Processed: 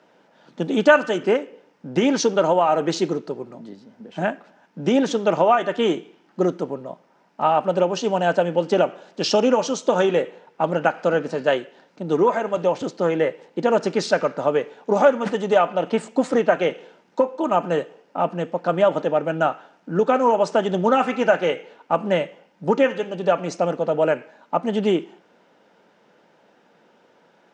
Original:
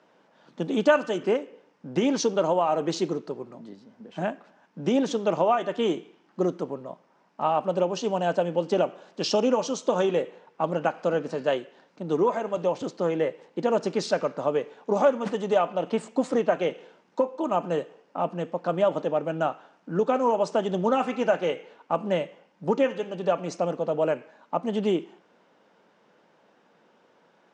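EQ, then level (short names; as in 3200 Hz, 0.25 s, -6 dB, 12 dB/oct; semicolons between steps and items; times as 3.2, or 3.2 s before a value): notch 1100 Hz, Q 10; dynamic EQ 1600 Hz, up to +5 dB, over -39 dBFS, Q 1.1; +4.5 dB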